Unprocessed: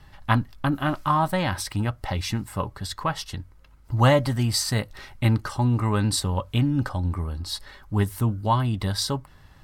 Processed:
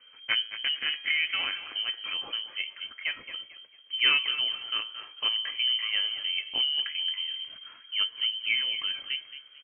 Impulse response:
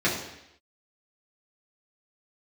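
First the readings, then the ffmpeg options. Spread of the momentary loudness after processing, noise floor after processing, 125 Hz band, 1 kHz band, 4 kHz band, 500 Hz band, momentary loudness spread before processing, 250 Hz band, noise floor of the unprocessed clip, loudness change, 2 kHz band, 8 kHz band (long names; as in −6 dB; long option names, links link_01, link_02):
11 LU, −54 dBFS, below −40 dB, −18.0 dB, +9.0 dB, −24.5 dB, 10 LU, below −30 dB, −51 dBFS, −2.5 dB, +3.0 dB, below −40 dB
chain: -filter_complex "[0:a]bandreject=frequency=109.3:width_type=h:width=4,bandreject=frequency=218.6:width_type=h:width=4,bandreject=frequency=327.9:width_type=h:width=4,bandreject=frequency=437.2:width_type=h:width=4,bandreject=frequency=546.5:width_type=h:width=4,bandreject=frequency=655.8:width_type=h:width=4,bandreject=frequency=765.1:width_type=h:width=4,bandreject=frequency=874.4:width_type=h:width=4,bandreject=frequency=983.7:width_type=h:width=4,bandreject=frequency=1093:width_type=h:width=4,bandreject=frequency=1202.3:width_type=h:width=4,bandreject=frequency=1311.6:width_type=h:width=4,bandreject=frequency=1420.9:width_type=h:width=4,bandreject=frequency=1530.2:width_type=h:width=4,bandreject=frequency=1639.5:width_type=h:width=4,bandreject=frequency=1748.8:width_type=h:width=4,bandreject=frequency=1858.1:width_type=h:width=4,bandreject=frequency=1967.4:width_type=h:width=4,bandreject=frequency=2076.7:width_type=h:width=4,bandreject=frequency=2186:width_type=h:width=4,bandreject=frequency=2295.3:width_type=h:width=4,bandreject=frequency=2404.6:width_type=h:width=4,bandreject=frequency=2513.9:width_type=h:width=4,bandreject=frequency=2623.2:width_type=h:width=4,bandreject=frequency=2732.5:width_type=h:width=4,bandreject=frequency=2841.8:width_type=h:width=4,lowpass=frequency=2700:width_type=q:width=0.5098,lowpass=frequency=2700:width_type=q:width=0.6013,lowpass=frequency=2700:width_type=q:width=0.9,lowpass=frequency=2700:width_type=q:width=2.563,afreqshift=-3200,asplit=4[link_01][link_02][link_03][link_04];[link_02]adelay=222,afreqshift=45,volume=-12dB[link_05];[link_03]adelay=444,afreqshift=90,volume=-21.9dB[link_06];[link_04]adelay=666,afreqshift=135,volume=-31.8dB[link_07];[link_01][link_05][link_06][link_07]amix=inputs=4:normalize=0,volume=-6dB"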